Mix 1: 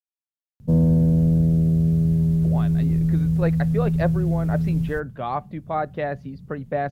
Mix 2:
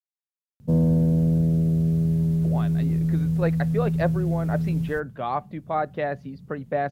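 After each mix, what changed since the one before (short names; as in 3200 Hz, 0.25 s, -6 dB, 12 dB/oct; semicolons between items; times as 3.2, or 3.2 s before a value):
master: add low shelf 94 Hz -10 dB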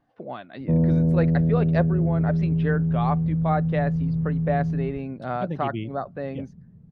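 speech: entry -2.25 s; background: add LPF 1200 Hz 12 dB/oct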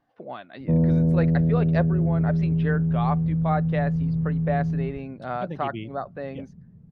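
speech: add low shelf 370 Hz -5.5 dB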